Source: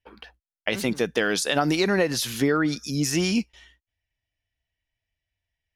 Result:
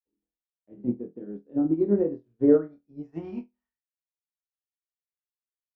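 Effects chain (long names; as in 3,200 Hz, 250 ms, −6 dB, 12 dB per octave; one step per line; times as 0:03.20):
low-pass filter sweep 300 Hz → 2,400 Hz, 0:01.70–0:04.62
flutter between parallel walls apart 4.2 metres, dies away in 0.4 s
expander for the loud parts 2.5 to 1, over −37 dBFS
level −2 dB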